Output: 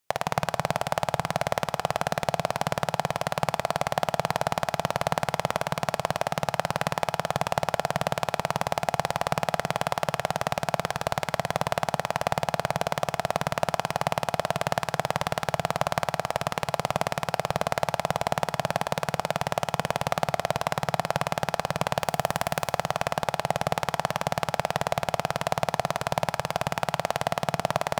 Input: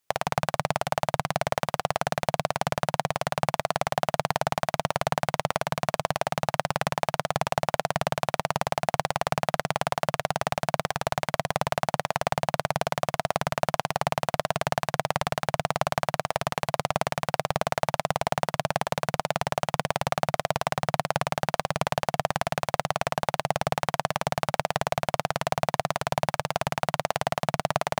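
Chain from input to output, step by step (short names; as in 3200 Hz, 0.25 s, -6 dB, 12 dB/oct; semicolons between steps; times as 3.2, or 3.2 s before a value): 21.99–22.73 high shelf 9400 Hz +9.5 dB; reverb RT60 3.1 s, pre-delay 20 ms, DRR 17 dB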